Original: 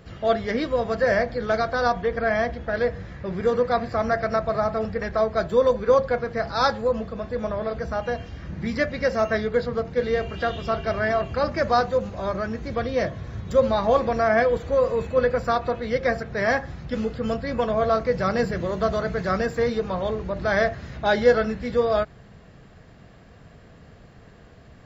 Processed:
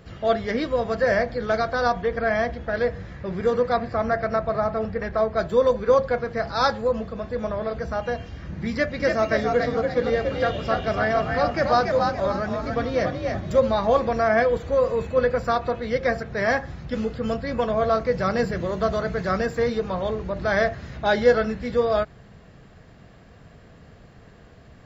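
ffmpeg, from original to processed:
-filter_complex "[0:a]asettb=1/sr,asplit=3[a][b][c];[a]atrim=end=3.774[d];[b]atrim=start=3.77:end=5.39,asetpts=PTS-STARTPTS,afade=t=in:d=0.004:c=qsin,afade=t=out:st=1.616:d=0.004:c=qsin,highshelf=f=5.8k:g=-12[e];[c]atrim=start=5.386[f];[d][e]acrossfade=d=0.004:c1=hsin:c2=qsin[g];[g][f]acrossfade=d=0.004:c1=qsin:c2=hsin,asettb=1/sr,asplit=3[h][i][j];[h]atrim=end=8.714[k];[i]atrim=start=8.71:end=13.59,asetpts=PTS-STARTPTS,afade=t=in:d=0.004:c=qsin,afade=t=out:st=4.876:d=0.004:c=qsin,asplit=5[l][m][n][o][p];[m]adelay=286,afreqshift=50,volume=-4dB[q];[n]adelay=572,afreqshift=100,volume=-13.4dB[r];[o]adelay=858,afreqshift=150,volume=-22.7dB[s];[p]adelay=1144,afreqshift=200,volume=-32.1dB[t];[l][q][r][s][t]amix=inputs=5:normalize=0,atrim=end_sample=215208[u];[j]atrim=start=13.586[v];[k][u]acrossfade=d=0.004:c1=hsin:c2=qsin[w];[w][v]acrossfade=d=0.004:c1=qsin:c2=hsin"

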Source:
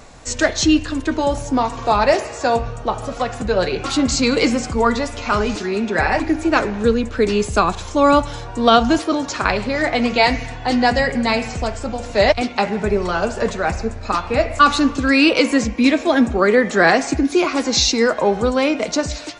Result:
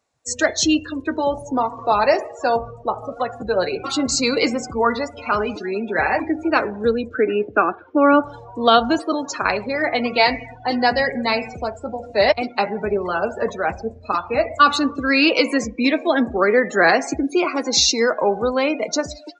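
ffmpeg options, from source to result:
-filter_complex "[0:a]asettb=1/sr,asplit=3[a][b][c];[a]atrim=end=7.144[d];[b]atrim=start=7.14:end=8.24,asetpts=PTS-STARTPTS,afade=t=in:d=0.004:c=qsin,afade=t=out:st=1.096:d=0.004:c=qsin,highpass=150,equalizer=f=170:t=q:w=4:g=-5,equalizer=f=310:t=q:w=4:g=8,equalizer=f=1k:t=q:w=4:g=-5,equalizer=f=1.5k:t=q:w=4:g=6,lowpass=f=2.8k:w=0.5412,lowpass=f=2.8k:w=1.3066[e];[c]atrim=start=8.236[f];[d][e]acrossfade=d=0.004:c1=hsin:c2=qsin[g];[g][f]acrossfade=d=0.004:c1=qsin:c2=hsin,highpass=66,afftdn=nr=29:nf=-27,bass=f=250:g=-8,treble=f=4k:g=3,volume=-1dB"

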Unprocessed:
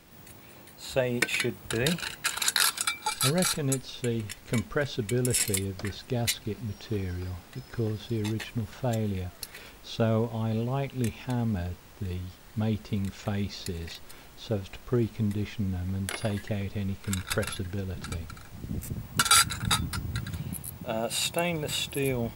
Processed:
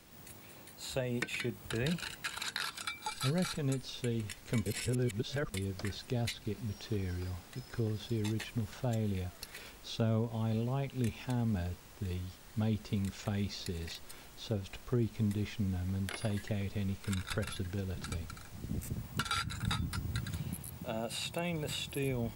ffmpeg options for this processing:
-filter_complex "[0:a]asplit=3[a][b][c];[a]atrim=end=4.662[d];[b]atrim=start=4.658:end=5.542,asetpts=PTS-STARTPTS,areverse[e];[c]atrim=start=5.538[f];[d][e]acrossfade=d=0.004:c1=hsin:c2=hsin[g];[g][f]acrossfade=d=0.004:c1=hsin:c2=hsin,acrossover=split=4300[h][i];[i]acompressor=threshold=-38dB:ratio=4:attack=1:release=60[j];[h][j]amix=inputs=2:normalize=0,equalizer=f=8k:t=o:w=1.9:g=3.5,acrossover=split=270[k][l];[l]acompressor=threshold=-35dB:ratio=2[m];[k][m]amix=inputs=2:normalize=0,volume=-4dB"

